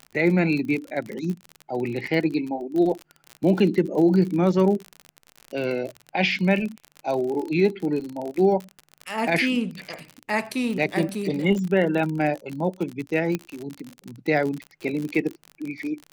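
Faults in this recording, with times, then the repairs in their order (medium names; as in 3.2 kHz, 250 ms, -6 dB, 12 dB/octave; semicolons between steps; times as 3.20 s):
crackle 47 per s -28 dBFS
13.35 s: pop -12 dBFS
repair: de-click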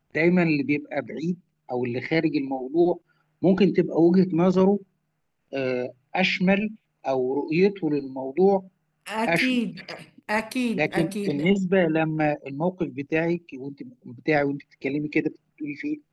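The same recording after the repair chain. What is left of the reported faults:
nothing left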